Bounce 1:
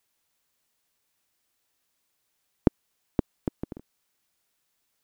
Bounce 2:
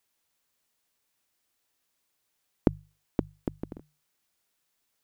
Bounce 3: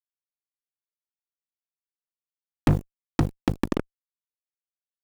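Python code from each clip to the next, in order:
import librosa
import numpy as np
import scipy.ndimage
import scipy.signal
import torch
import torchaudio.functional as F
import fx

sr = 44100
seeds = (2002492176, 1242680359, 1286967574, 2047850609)

y1 = fx.hum_notches(x, sr, base_hz=50, count=3)
y1 = y1 * librosa.db_to_amplitude(-1.5)
y2 = fx.fuzz(y1, sr, gain_db=42.0, gate_db=-48.0)
y2 = fx.doppler_dist(y2, sr, depth_ms=0.39)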